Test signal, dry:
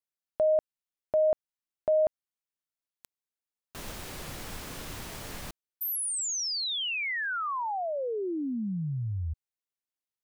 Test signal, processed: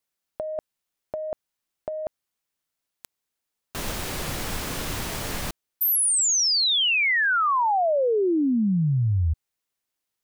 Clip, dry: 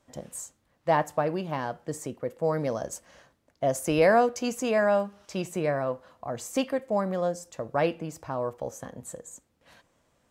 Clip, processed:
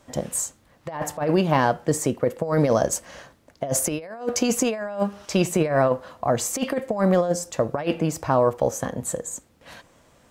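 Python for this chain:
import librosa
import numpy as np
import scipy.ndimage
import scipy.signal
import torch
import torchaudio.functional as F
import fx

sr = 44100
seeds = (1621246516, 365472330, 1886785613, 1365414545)

y = fx.over_compress(x, sr, threshold_db=-29.0, ratio=-0.5)
y = y * librosa.db_to_amplitude(8.5)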